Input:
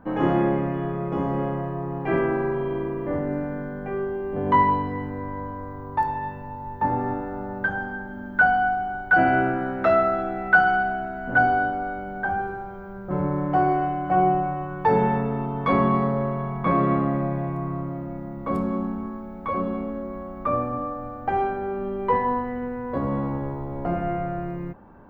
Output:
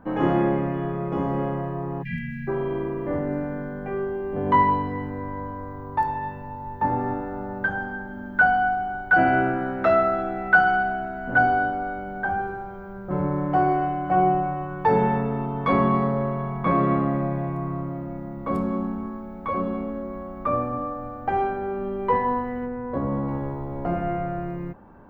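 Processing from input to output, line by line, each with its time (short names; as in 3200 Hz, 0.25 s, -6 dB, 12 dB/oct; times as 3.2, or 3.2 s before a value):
2.03–2.48 spectral delete 250–1600 Hz
22.65–23.27 high shelf 2800 Hz -> 2200 Hz -10.5 dB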